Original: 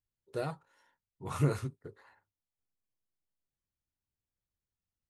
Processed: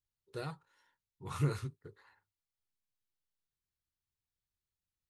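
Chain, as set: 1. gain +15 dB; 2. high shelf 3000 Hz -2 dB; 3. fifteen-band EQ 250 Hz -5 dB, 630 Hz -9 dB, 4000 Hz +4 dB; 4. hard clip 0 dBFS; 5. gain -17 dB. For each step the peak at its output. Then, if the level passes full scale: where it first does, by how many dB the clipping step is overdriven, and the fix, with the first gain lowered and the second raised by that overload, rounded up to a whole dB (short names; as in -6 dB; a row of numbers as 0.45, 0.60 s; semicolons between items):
-2.0, -2.5, -4.0, -4.0, -21.0 dBFS; no overload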